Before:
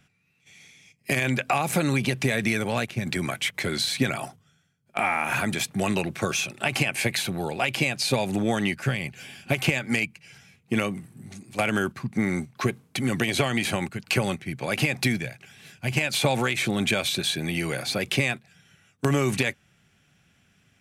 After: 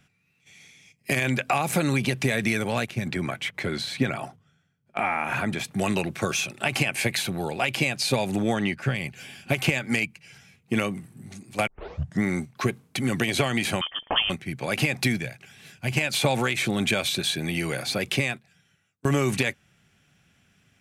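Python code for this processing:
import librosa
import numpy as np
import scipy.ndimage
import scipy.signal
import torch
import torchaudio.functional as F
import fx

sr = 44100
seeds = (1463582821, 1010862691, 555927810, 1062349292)

y = fx.high_shelf(x, sr, hz=4200.0, db=-11.5, at=(3.06, 5.64), fade=0.02)
y = fx.lowpass(y, sr, hz=3600.0, slope=6, at=(8.53, 8.95))
y = fx.freq_invert(y, sr, carrier_hz=3300, at=(13.81, 14.3))
y = fx.edit(y, sr, fx.tape_start(start_s=11.67, length_s=0.56),
    fx.fade_out_to(start_s=18.07, length_s=0.98, floor_db=-22.0), tone=tone)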